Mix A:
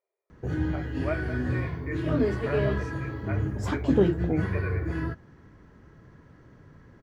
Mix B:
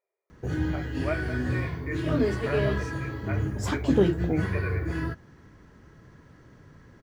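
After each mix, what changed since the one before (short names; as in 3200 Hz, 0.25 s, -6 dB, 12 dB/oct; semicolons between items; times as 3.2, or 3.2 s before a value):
master: add high shelf 3200 Hz +8.5 dB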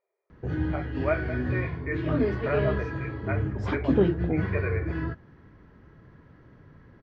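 speech +5.5 dB; master: add air absorption 260 m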